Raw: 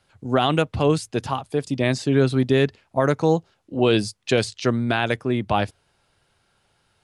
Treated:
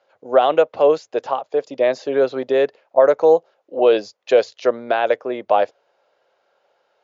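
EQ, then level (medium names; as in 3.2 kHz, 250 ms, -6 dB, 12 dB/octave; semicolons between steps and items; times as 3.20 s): resonant high-pass 540 Hz, resonance Q 3.5; brick-wall FIR low-pass 7.3 kHz; treble shelf 2.7 kHz -10 dB; +1.0 dB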